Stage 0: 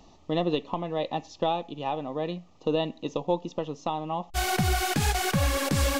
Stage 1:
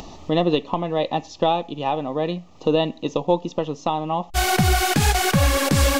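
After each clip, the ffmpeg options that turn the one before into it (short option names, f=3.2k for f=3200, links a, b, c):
-af "acompressor=mode=upward:threshold=-37dB:ratio=2.5,volume=7dB"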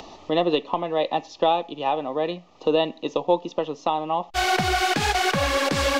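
-filter_complex "[0:a]acrossover=split=290 6000:gain=0.251 1 0.2[a][b][c];[a][b][c]amix=inputs=3:normalize=0"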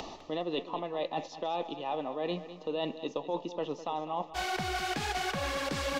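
-af "alimiter=limit=-12dB:level=0:latency=1:release=165,areverse,acompressor=threshold=-31dB:ratio=6,areverse,aecho=1:1:204|408|612|816:0.224|0.0918|0.0376|0.0154"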